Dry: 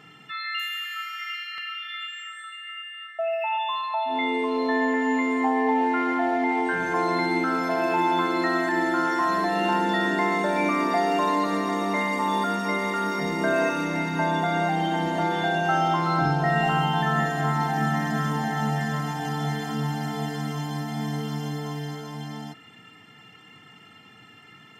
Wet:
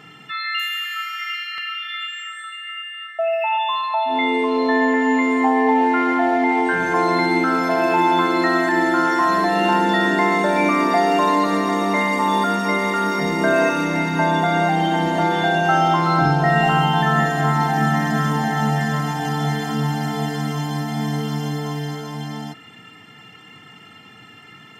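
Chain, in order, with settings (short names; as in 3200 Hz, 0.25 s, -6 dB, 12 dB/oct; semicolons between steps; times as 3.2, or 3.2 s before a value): 4.43–5.22 bell 12000 Hz -9 dB 0.5 oct; gain +6 dB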